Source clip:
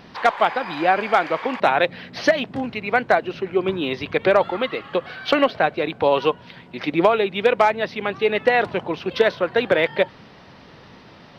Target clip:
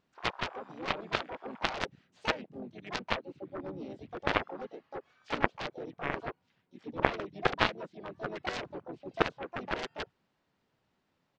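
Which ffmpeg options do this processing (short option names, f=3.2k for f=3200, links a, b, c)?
-filter_complex "[0:a]asplit=4[a][b][c][d];[b]asetrate=35002,aresample=44100,atempo=1.25992,volume=-4dB[e];[c]asetrate=37084,aresample=44100,atempo=1.18921,volume=-9dB[f];[d]asetrate=66075,aresample=44100,atempo=0.66742,volume=-4dB[g];[a][e][f][g]amix=inputs=4:normalize=0,afwtdn=0.1,aeval=exprs='1.12*(cos(1*acos(clip(val(0)/1.12,-1,1)))-cos(1*PI/2))+0.447*(cos(3*acos(clip(val(0)/1.12,-1,1)))-cos(3*PI/2))':c=same,volume=-4dB"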